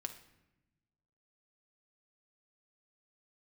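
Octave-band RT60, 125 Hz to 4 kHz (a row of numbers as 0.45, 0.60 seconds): 1.7, 1.5, 1.0, 0.90, 0.90, 0.65 seconds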